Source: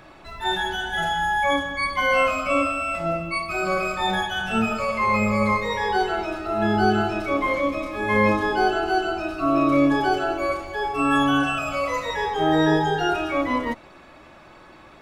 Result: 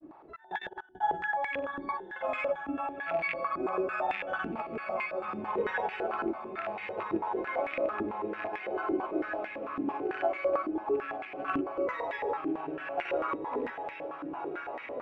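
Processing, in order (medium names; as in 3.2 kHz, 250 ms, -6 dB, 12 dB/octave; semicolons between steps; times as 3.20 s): rattle on loud lows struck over -30 dBFS, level -13 dBFS; tilt EQ -2 dB/octave; compressor with a negative ratio -23 dBFS, ratio -1; trance gate "xx.x.xxxxxx." 83 bpm -24 dB; granulator, pitch spread up and down by 0 st; on a send: echo that smears into a reverb 1423 ms, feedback 52%, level -4.5 dB; on the sum: step-sequenced band-pass 9 Hz 310–2100 Hz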